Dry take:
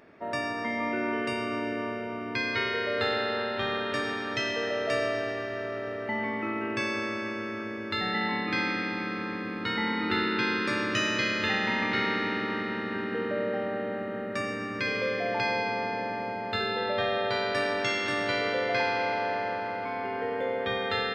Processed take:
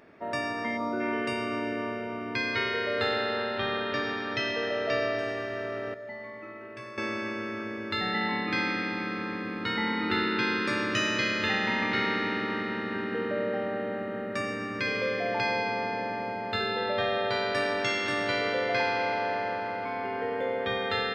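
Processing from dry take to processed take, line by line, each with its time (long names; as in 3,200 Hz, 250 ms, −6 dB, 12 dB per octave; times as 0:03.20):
0:00.77–0:01.00: gain on a spectral selection 1,500–3,300 Hz −15 dB
0:03.58–0:05.19: Butterworth low-pass 5,600 Hz
0:05.94–0:06.98: stiff-string resonator 61 Hz, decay 0.44 s, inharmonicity 0.002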